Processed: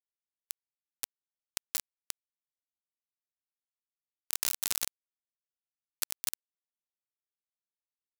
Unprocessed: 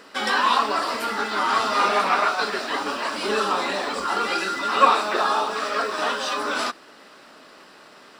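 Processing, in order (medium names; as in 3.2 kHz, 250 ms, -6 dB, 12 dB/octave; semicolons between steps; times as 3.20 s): fade-in on the opening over 0.96 s; hard clipper -13 dBFS, distortion -16 dB; compression 16:1, threshold -23 dBFS, peak gain reduction 9 dB; 2.11–3.81 s: tape spacing loss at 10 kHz 21 dB; echo that smears into a reverb 1008 ms, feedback 54%, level -10 dB; rotary cabinet horn 7.5 Hz, later 0.65 Hz, at 1.36 s; reverberation RT60 0.55 s, pre-delay 3 ms, DRR 11 dB; saturation -22.5 dBFS, distortion -18 dB; high-pass 1.2 kHz 12 dB/octave; bit crusher 4-bit; treble shelf 3.7 kHz +11.5 dB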